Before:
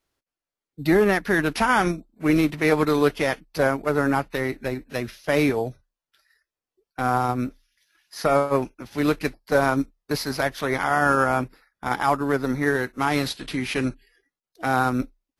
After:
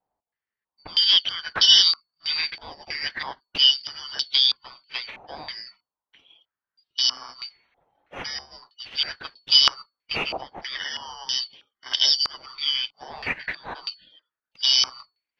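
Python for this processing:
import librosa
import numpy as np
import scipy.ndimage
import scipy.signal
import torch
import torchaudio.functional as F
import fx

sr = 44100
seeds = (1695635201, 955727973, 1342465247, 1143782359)

y = fx.band_shuffle(x, sr, order='4321')
y = fx.filter_held_lowpass(y, sr, hz=3.1, low_hz=790.0, high_hz=3600.0)
y = y * 10.0 ** (1.5 / 20.0)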